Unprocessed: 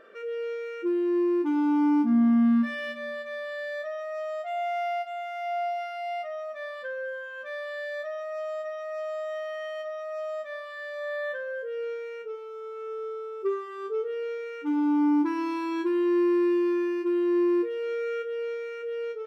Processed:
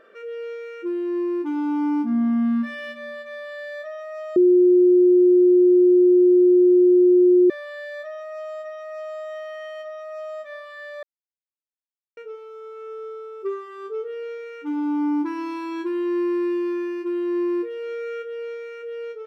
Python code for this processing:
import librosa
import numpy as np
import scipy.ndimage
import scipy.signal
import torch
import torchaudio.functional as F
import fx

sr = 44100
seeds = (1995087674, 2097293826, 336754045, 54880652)

y = fx.edit(x, sr, fx.bleep(start_s=4.36, length_s=3.14, hz=359.0, db=-11.0),
    fx.silence(start_s=11.03, length_s=1.14), tone=tone)